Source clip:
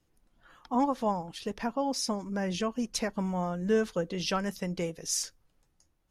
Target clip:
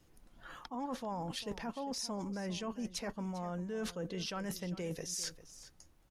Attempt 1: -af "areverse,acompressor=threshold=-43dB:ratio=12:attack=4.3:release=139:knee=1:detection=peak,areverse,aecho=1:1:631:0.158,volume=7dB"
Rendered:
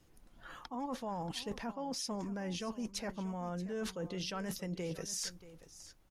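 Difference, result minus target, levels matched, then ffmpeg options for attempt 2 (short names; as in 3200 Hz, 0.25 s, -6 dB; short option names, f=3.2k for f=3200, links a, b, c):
echo 0.233 s late
-af "areverse,acompressor=threshold=-43dB:ratio=12:attack=4.3:release=139:knee=1:detection=peak,areverse,aecho=1:1:398:0.158,volume=7dB"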